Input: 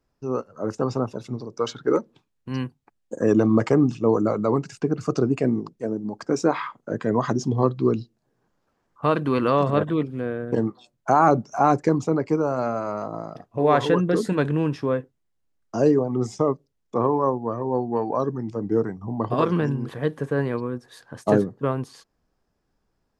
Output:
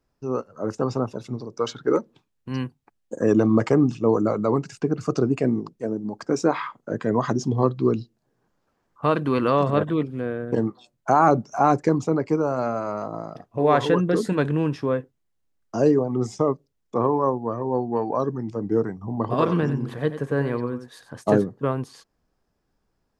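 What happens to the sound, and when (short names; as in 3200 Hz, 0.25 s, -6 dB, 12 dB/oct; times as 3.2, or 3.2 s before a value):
19.05–21.15 echo 92 ms -11.5 dB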